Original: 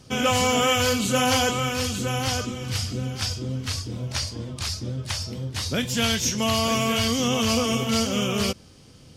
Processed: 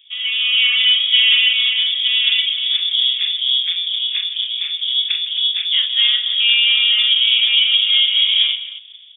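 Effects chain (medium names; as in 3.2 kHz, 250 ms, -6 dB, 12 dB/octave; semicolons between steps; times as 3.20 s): level rider gain up to 11 dB; frequency inversion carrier 3.5 kHz; Chebyshev high-pass 2.5 kHz, order 3; on a send: multi-tap echo 41/158/265 ms -6/-15.5/-15.5 dB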